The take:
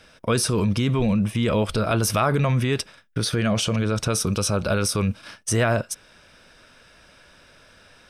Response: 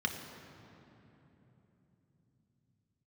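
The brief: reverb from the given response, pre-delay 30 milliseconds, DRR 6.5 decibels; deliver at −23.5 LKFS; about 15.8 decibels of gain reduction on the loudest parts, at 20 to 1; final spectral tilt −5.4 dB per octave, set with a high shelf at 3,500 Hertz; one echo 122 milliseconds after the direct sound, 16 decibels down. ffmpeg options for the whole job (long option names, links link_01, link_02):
-filter_complex "[0:a]highshelf=frequency=3500:gain=-7,acompressor=threshold=-33dB:ratio=20,aecho=1:1:122:0.158,asplit=2[link_01][link_02];[1:a]atrim=start_sample=2205,adelay=30[link_03];[link_02][link_03]afir=irnorm=-1:irlink=0,volume=-12dB[link_04];[link_01][link_04]amix=inputs=2:normalize=0,volume=13dB"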